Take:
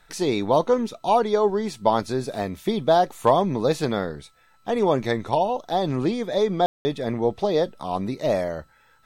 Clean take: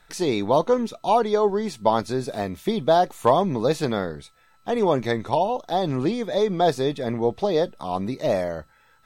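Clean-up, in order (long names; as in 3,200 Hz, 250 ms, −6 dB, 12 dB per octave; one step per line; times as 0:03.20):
ambience match 0:06.66–0:06.85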